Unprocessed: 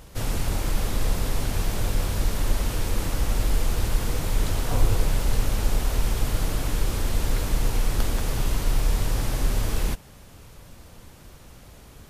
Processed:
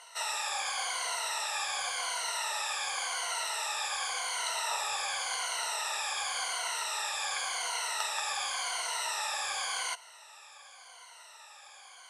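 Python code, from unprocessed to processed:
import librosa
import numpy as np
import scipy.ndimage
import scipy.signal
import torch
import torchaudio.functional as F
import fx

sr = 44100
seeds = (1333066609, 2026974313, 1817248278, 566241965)

y = fx.spec_ripple(x, sr, per_octave=1.9, drift_hz=-0.9, depth_db=17)
y = scipy.signal.sosfilt(scipy.signal.ellip(3, 1.0, 50, [800.0, 9100.0], 'bandpass', fs=sr, output='sos'), y)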